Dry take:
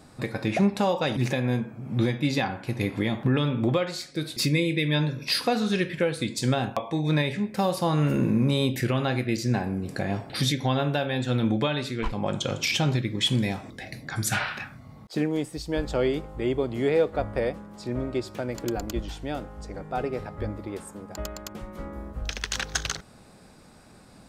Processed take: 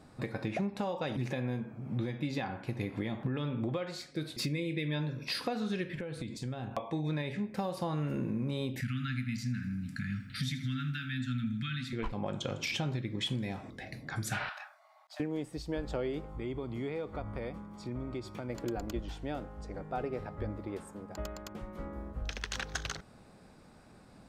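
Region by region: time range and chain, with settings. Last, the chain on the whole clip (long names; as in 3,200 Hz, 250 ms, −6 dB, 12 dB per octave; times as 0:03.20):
0:05.95–0:06.77: downward compressor, threshold −33 dBFS + low-shelf EQ 160 Hz +8.5 dB
0:08.81–0:11.93: Chebyshev band-stop filter 260–1,300 Hz, order 5 + feedback echo at a low word length 81 ms, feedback 55%, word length 9 bits, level −14.5 dB
0:14.49–0:15.20: linear-phase brick-wall high-pass 570 Hz + dynamic equaliser 2,300 Hz, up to −7 dB, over −50 dBFS, Q 1.3
0:16.30–0:18.50: comb filter 0.9 ms, depth 38% + downward compressor 2.5 to 1, threshold −31 dBFS
whole clip: high-shelf EQ 3,900 Hz −7.5 dB; downward compressor, threshold −26 dBFS; level −4.5 dB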